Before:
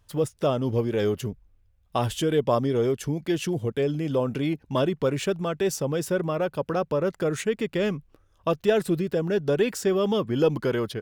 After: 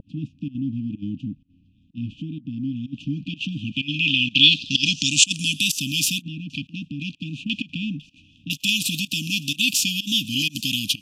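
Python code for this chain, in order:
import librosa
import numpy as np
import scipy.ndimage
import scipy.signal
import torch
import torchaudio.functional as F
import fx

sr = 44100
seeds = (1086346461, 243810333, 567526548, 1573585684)

y = fx.bin_compress(x, sr, power=0.6)
y = fx.low_shelf(y, sr, hz=330.0, db=-4.0)
y = fx.echo_wet_highpass(y, sr, ms=779, feedback_pct=77, hz=2700.0, wet_db=-23.5)
y = fx.volume_shaper(y, sr, bpm=126, per_beat=1, depth_db=-20, release_ms=67.0, shape='slow start')
y = fx.filter_lfo_lowpass(y, sr, shape='saw_down', hz=2.0, low_hz=760.0, high_hz=2800.0, q=0.74, at=(6.21, 8.5), fade=0.02)
y = fx.rider(y, sr, range_db=10, speed_s=0.5)
y = fx.weighting(y, sr, curve='D')
y = fx.vibrato(y, sr, rate_hz=1.8, depth_cents=52.0)
y = fx.brickwall_bandstop(y, sr, low_hz=300.0, high_hz=2400.0)
y = fx.filter_sweep_lowpass(y, sr, from_hz=540.0, to_hz=13000.0, start_s=2.49, end_s=5.79, q=3.1)
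y = y * 10.0 ** (4.0 / 20.0)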